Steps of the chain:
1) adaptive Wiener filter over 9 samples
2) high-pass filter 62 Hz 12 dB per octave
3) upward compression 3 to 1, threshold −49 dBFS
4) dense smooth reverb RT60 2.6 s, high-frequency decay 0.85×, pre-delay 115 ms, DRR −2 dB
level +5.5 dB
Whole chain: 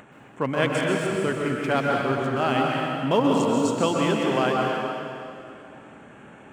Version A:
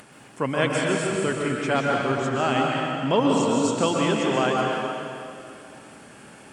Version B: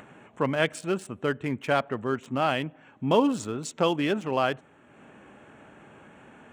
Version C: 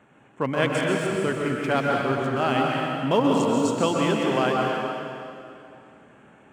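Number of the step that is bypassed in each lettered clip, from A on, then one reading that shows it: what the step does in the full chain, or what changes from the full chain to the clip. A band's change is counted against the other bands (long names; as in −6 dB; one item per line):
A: 1, 8 kHz band +4.5 dB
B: 4, change in crest factor +3.5 dB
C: 3, change in momentary loudness spread −1 LU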